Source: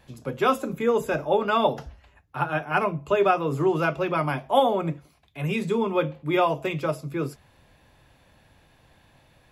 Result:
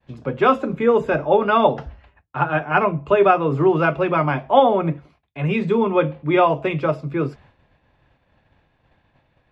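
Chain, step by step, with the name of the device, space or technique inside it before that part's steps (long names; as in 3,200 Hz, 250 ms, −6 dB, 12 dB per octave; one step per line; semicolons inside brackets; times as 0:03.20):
hearing-loss simulation (low-pass filter 2,800 Hz 12 dB per octave; downward expander −50 dBFS)
level +6 dB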